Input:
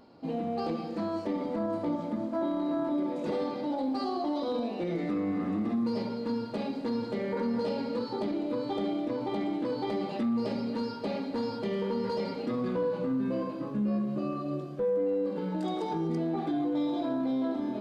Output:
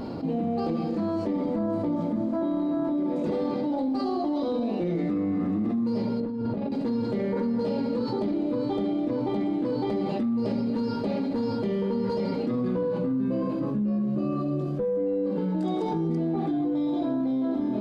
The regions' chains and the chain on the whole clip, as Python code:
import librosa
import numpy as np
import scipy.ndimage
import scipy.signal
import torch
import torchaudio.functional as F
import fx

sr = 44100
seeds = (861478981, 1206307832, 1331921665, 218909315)

y = fx.chain(x, sr, fx.lowpass(hz=1300.0, slope=6),
    fx.over_compress(threshold_db=-38.0, ratio=-0.5), at=(6.2, 6.72))
y = fx.low_shelf(y, sr, hz=460.0, db=10.5)
y = fx.env_flatten(y, sr, amount_pct=70)
y = y * librosa.db_to_amplitude(-6.5)